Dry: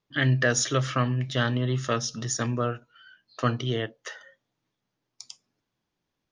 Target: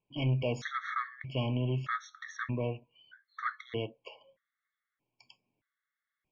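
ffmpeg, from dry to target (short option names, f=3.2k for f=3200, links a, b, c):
-af "asoftclip=type=tanh:threshold=-19.5dB,lowpass=f=2.2k:t=q:w=2.2,afftfilt=real='re*gt(sin(2*PI*0.8*pts/sr)*(1-2*mod(floor(b*sr/1024/1100),2)),0)':imag='im*gt(sin(2*PI*0.8*pts/sr)*(1-2*mod(floor(b*sr/1024/1100),2)),0)':win_size=1024:overlap=0.75,volume=-3.5dB"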